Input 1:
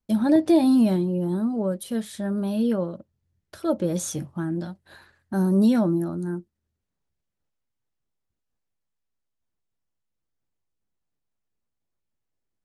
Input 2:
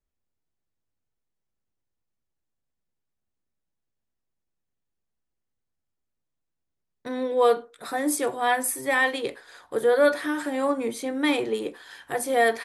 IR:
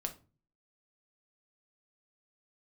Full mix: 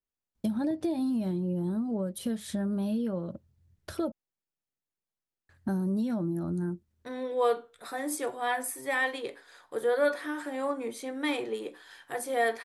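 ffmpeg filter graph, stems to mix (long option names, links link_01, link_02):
-filter_complex "[0:a]equalizer=frequency=75:width_type=o:width=2.3:gain=7.5,acompressor=threshold=-30dB:ratio=6,adelay=350,volume=1.5dB,asplit=3[link_01][link_02][link_03];[link_01]atrim=end=4.12,asetpts=PTS-STARTPTS,afade=type=out:start_time=4.116:duration=0.004:curve=hsin[link_04];[link_02]atrim=start=4.12:end=5.49,asetpts=PTS-STARTPTS,volume=0[link_05];[link_03]atrim=start=5.49,asetpts=PTS-STARTPTS,afade=type=in:duration=0.004:curve=hsin[link_06];[link_04][link_05][link_06]concat=n=3:v=0:a=1[link_07];[1:a]lowshelf=frequency=140:gain=-9.5,flanger=delay=8:depth=1.2:regen=-84:speed=1.1:shape=triangular,adynamicequalizer=threshold=0.00891:dfrequency=2300:dqfactor=0.7:tfrequency=2300:tqfactor=0.7:attack=5:release=100:ratio=0.375:range=2:mode=cutabove:tftype=highshelf,volume=-1.5dB[link_08];[link_07][link_08]amix=inputs=2:normalize=0"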